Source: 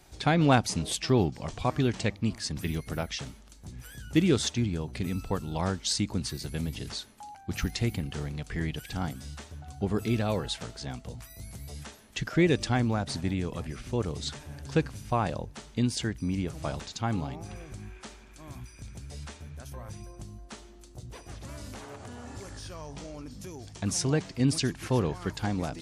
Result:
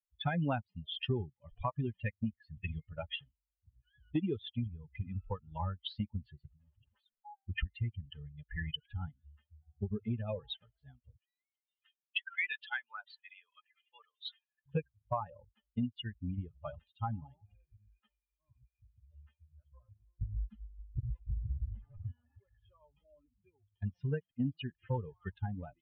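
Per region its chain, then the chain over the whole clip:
0:06.46–0:07.25: each half-wave held at its own peak + all-pass dispersion highs, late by 65 ms, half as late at 590 Hz + downward compressor, threshold −39 dBFS
0:11.17–0:14.66: high-pass filter 970 Hz + high-shelf EQ 5,000 Hz +11.5 dB
0:20.21–0:22.12: bass and treble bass +14 dB, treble +4 dB + comb filter 5.8 ms, depth 33%
whole clip: spectral dynamics exaggerated over time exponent 3; Butterworth low-pass 3,300 Hz 72 dB per octave; downward compressor 5 to 1, threshold −47 dBFS; level +13.5 dB

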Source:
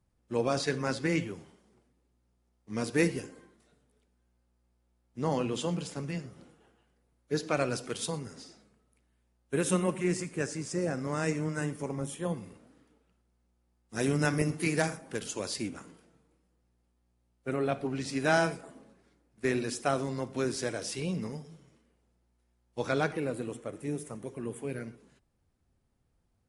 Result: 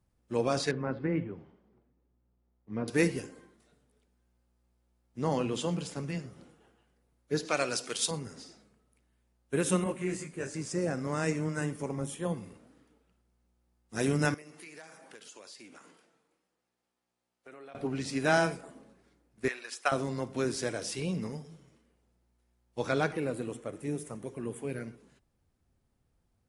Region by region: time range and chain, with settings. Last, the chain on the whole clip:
0:00.71–0:02.88: treble cut that deepens with the level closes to 2,300 Hz, closed at −27.5 dBFS + head-to-tape spacing loss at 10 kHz 36 dB
0:07.45–0:08.11: high-pass filter 380 Hz 6 dB per octave + parametric band 5,800 Hz +7 dB 2.4 octaves
0:09.84–0:10.54: notch filter 5,400 Hz, Q 9.4 + micro pitch shift up and down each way 27 cents
0:14.34–0:17.75: meter weighting curve A + downward compressor 4 to 1, threshold −49 dBFS
0:19.48–0:19.92: high-pass filter 1,100 Hz + high-shelf EQ 4,600 Hz −9 dB + transient designer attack +9 dB, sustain −1 dB
whole clip: no processing

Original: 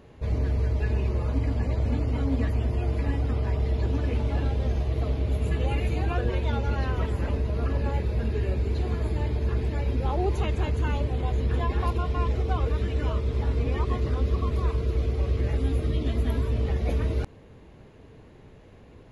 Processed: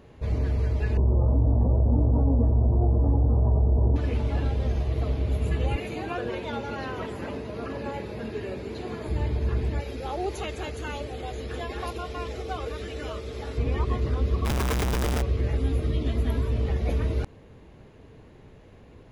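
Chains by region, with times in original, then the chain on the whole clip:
0:00.97–0:03.96: Butterworth low-pass 970 Hz + double-tracking delay 17 ms −6.5 dB + envelope flattener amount 70%
0:05.76–0:09.08: high-pass filter 190 Hz + repeating echo 69 ms, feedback 55%, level −16 dB
0:09.80–0:13.58: bass and treble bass −12 dB, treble +6 dB + notch filter 990 Hz, Q 6.3
0:14.45–0:15.22: sign of each sample alone + notch filter 4,300 Hz, Q 11
whole clip: no processing

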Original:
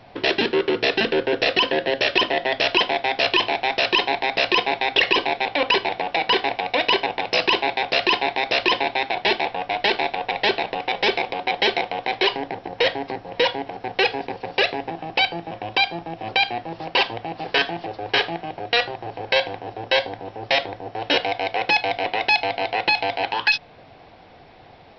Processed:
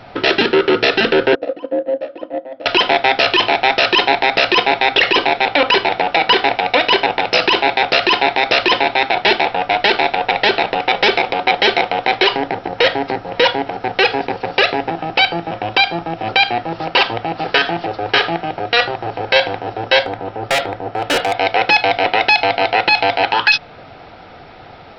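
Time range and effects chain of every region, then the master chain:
0:01.35–0:02.66: pair of resonant band-passes 400 Hz, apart 0.8 octaves + noise gate −30 dBFS, range −8 dB
0:20.03–0:21.38: low-pass filter 3,200 Hz 6 dB per octave + gain into a clipping stage and back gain 21 dB
whole clip: parametric band 1,300 Hz +11 dB 0.3 octaves; notch filter 1,100 Hz, Q 9.8; brickwall limiter −10.5 dBFS; level +8.5 dB

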